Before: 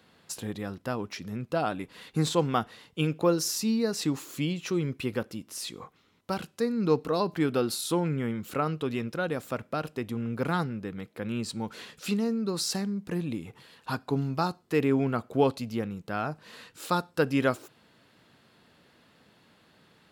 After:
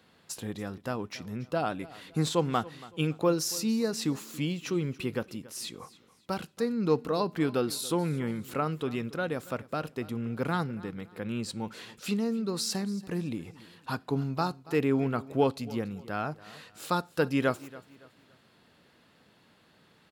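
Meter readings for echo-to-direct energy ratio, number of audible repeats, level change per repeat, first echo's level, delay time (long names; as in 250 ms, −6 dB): −19.0 dB, 2, −9.5 dB, −19.5 dB, 281 ms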